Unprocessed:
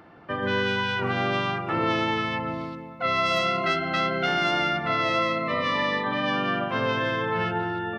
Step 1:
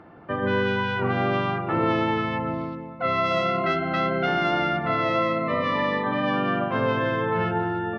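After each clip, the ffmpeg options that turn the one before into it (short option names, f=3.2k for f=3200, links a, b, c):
-af "lowpass=f=1.3k:p=1,volume=3.5dB"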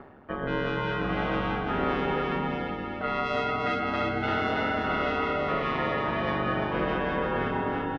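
-af "areverse,acompressor=mode=upward:threshold=-28dB:ratio=2.5,areverse,aeval=exprs='val(0)*sin(2*PI*70*n/s)':c=same,aecho=1:1:340|612|829.6|1004|1143:0.631|0.398|0.251|0.158|0.1,volume=-3dB"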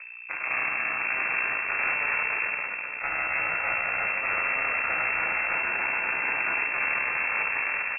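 -af "aeval=exprs='val(0)+0.0141*(sin(2*PI*60*n/s)+sin(2*PI*2*60*n/s)/2+sin(2*PI*3*60*n/s)/3+sin(2*PI*4*60*n/s)/4+sin(2*PI*5*60*n/s)/5)':c=same,aeval=exprs='0.224*(cos(1*acos(clip(val(0)/0.224,-1,1)))-cos(1*PI/2))+0.0355*(cos(3*acos(clip(val(0)/0.224,-1,1)))-cos(3*PI/2))+0.0501*(cos(6*acos(clip(val(0)/0.224,-1,1)))-cos(6*PI/2))':c=same,lowpass=f=2.3k:t=q:w=0.5098,lowpass=f=2.3k:t=q:w=0.6013,lowpass=f=2.3k:t=q:w=0.9,lowpass=f=2.3k:t=q:w=2.563,afreqshift=-2700"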